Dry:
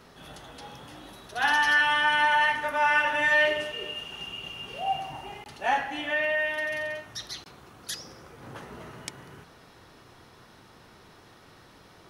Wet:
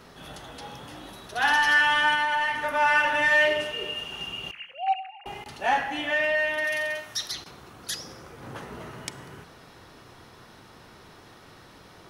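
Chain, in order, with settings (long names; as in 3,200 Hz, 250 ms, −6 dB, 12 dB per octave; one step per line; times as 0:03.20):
0:04.51–0:05.26: three sine waves on the formant tracks
in parallel at −7 dB: soft clipping −26.5 dBFS, distortion −8 dB
0:02.13–0:02.75: on the sum: downward compressor, threshold −22 dBFS, peak gain reduction 5 dB
0:06.64–0:07.32: spectral tilt +2 dB per octave
four-comb reverb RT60 0.93 s, combs from 32 ms, DRR 18.5 dB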